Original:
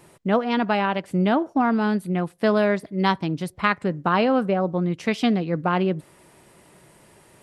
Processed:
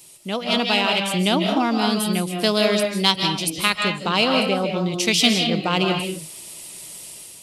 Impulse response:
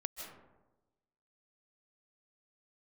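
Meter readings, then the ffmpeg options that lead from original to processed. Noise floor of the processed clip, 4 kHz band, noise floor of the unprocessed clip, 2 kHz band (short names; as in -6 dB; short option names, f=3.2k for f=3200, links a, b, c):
-41 dBFS, +15.5 dB, -54 dBFS, +4.0 dB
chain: -filter_complex "[1:a]atrim=start_sample=2205,afade=t=out:st=0.32:d=0.01,atrim=end_sample=14553[a];[0:a][a]afir=irnorm=-1:irlink=0,dynaudnorm=f=200:g=5:m=8dB,aexciter=amount=5.4:drive=8.4:freq=2.5k,volume=-5.5dB"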